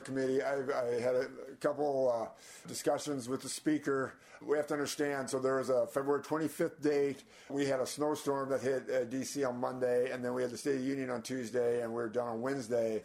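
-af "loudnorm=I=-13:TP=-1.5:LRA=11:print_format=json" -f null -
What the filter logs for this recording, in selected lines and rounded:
"input_i" : "-34.8",
"input_tp" : "-18.4",
"input_lra" : "1.3",
"input_thresh" : "-44.9",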